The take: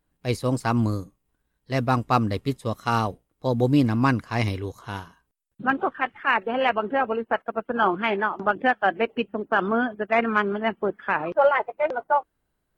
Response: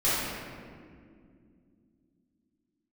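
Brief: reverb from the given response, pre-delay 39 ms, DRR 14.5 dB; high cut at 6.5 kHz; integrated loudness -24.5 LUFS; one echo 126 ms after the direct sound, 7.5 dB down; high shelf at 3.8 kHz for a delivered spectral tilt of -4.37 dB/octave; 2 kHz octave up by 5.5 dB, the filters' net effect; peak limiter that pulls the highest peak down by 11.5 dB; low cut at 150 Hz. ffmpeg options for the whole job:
-filter_complex "[0:a]highpass=150,lowpass=6500,equalizer=f=2000:t=o:g=8.5,highshelf=f=3800:g=-5.5,alimiter=limit=0.188:level=0:latency=1,aecho=1:1:126:0.422,asplit=2[s0][s1];[1:a]atrim=start_sample=2205,adelay=39[s2];[s1][s2]afir=irnorm=-1:irlink=0,volume=0.0376[s3];[s0][s3]amix=inputs=2:normalize=0,volume=1.26"

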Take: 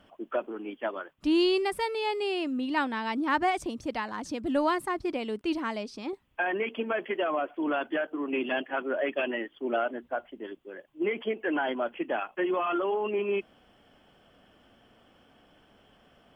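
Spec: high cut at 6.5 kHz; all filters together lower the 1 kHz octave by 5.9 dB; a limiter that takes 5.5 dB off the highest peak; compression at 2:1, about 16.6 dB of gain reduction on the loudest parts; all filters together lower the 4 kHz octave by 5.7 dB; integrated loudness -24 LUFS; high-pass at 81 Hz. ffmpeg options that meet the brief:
-af "highpass=81,lowpass=6500,equalizer=f=1000:t=o:g=-8,equalizer=f=4000:t=o:g=-7.5,acompressor=threshold=0.002:ratio=2,volume=15,alimiter=limit=0.178:level=0:latency=1"

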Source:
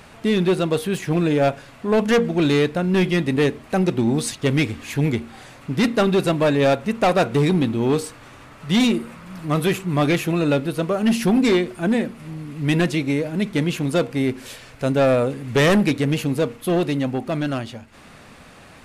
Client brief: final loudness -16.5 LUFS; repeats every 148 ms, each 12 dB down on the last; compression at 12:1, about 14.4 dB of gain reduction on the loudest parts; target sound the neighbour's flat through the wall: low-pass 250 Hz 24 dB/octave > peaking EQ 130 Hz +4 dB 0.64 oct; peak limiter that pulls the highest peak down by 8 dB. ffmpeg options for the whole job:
-af "acompressor=threshold=0.0355:ratio=12,alimiter=level_in=1.33:limit=0.0631:level=0:latency=1,volume=0.75,lowpass=f=250:w=0.5412,lowpass=f=250:w=1.3066,equalizer=f=130:t=o:w=0.64:g=4,aecho=1:1:148|296|444:0.251|0.0628|0.0157,volume=10"

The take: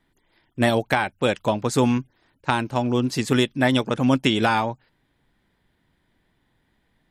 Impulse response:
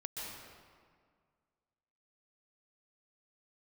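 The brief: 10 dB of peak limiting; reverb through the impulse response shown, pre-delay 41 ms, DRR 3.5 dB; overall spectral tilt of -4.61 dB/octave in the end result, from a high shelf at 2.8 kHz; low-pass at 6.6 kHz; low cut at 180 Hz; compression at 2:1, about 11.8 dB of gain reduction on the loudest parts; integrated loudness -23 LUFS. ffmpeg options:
-filter_complex "[0:a]highpass=180,lowpass=6600,highshelf=f=2800:g=4,acompressor=threshold=0.0141:ratio=2,alimiter=limit=0.0794:level=0:latency=1,asplit=2[s0][s1];[1:a]atrim=start_sample=2205,adelay=41[s2];[s1][s2]afir=irnorm=-1:irlink=0,volume=0.631[s3];[s0][s3]amix=inputs=2:normalize=0,volume=3.76"

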